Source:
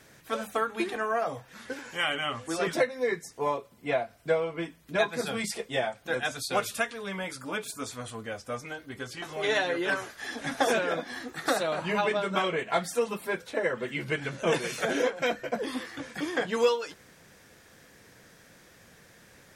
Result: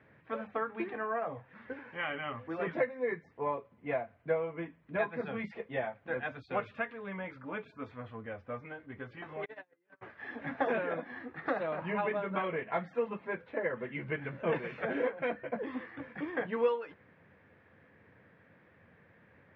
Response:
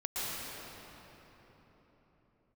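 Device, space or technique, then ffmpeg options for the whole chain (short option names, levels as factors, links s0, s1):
bass cabinet: -filter_complex "[0:a]highpass=89,equalizer=f=91:t=q:w=4:g=7,equalizer=f=370:t=q:w=4:g=-3,equalizer=f=720:t=q:w=4:g=-3,equalizer=f=1400:t=q:w=4:g=-4,lowpass=f=2200:w=0.5412,lowpass=f=2200:w=1.3066,asplit=3[s0][s1][s2];[s0]afade=t=out:st=9.44:d=0.02[s3];[s1]agate=range=0.00631:threshold=0.0631:ratio=16:detection=peak,afade=t=in:st=9.44:d=0.02,afade=t=out:st=10.01:d=0.02[s4];[s2]afade=t=in:st=10.01:d=0.02[s5];[s3][s4][s5]amix=inputs=3:normalize=0,volume=0.631"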